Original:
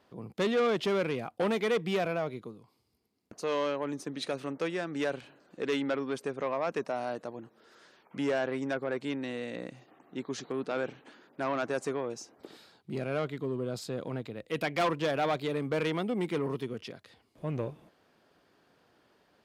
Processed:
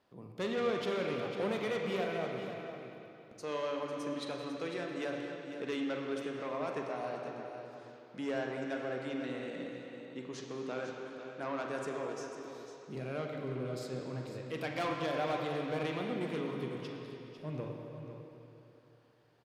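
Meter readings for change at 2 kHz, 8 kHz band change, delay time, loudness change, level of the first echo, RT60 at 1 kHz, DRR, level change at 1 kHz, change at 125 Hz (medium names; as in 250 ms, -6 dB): -4.5 dB, -6.0 dB, 499 ms, -5.5 dB, -10.5 dB, 2.9 s, 0.0 dB, -4.5 dB, -4.0 dB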